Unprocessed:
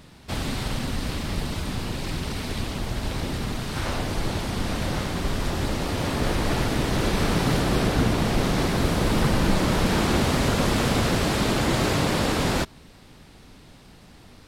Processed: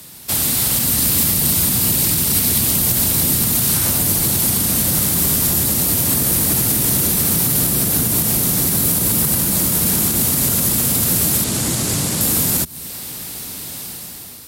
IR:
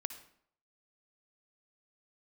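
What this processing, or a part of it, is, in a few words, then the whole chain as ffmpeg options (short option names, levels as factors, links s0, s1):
FM broadcast chain: -filter_complex "[0:a]asettb=1/sr,asplit=3[s0][s1][s2];[s0]atrim=end=11.444[s3];[s1]atrim=start=11.44:end=12.21,asetpts=PTS-STARTPTS,afade=t=in:d=0.004:c=qsin,afade=t=out:st=0.766:d=0.004:c=qsin,lowpass=7900[s4];[s2]atrim=start=12.206[s5];[s3][s4]acrossfade=d=0.004:c1=hsin:c2=qsin[s6];[s6][s5]acrossfade=d=0.004:c1=qsin:c2=hsin,highpass=77,dynaudnorm=f=690:g=3:m=4.47,acrossover=split=110|250|6900[s7][s8][s9][s10];[s7]acompressor=threshold=0.0355:ratio=4[s11];[s8]acompressor=threshold=0.0891:ratio=4[s12];[s9]acompressor=threshold=0.0316:ratio=4[s13];[s10]acompressor=threshold=0.0112:ratio=4[s14];[s11][s12][s13][s14]amix=inputs=4:normalize=0,aemphasis=mode=production:type=50fm,alimiter=limit=0.188:level=0:latency=1:release=123,asoftclip=type=hard:threshold=0.141,lowpass=f=15000:w=0.5412,lowpass=f=15000:w=1.3066,aemphasis=mode=production:type=50fm,volume=1.33"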